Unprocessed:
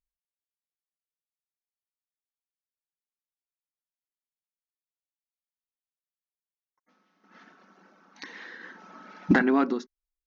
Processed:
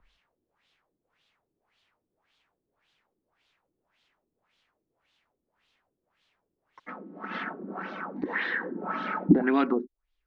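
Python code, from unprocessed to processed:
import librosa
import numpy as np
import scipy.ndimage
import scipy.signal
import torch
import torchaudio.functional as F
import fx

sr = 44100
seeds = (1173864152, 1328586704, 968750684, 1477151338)

y = fx.filter_lfo_lowpass(x, sr, shape='sine', hz=1.8, low_hz=320.0, high_hz=3600.0, q=2.8)
y = fx.band_squash(y, sr, depth_pct=70)
y = y * librosa.db_to_amplitude(4.5)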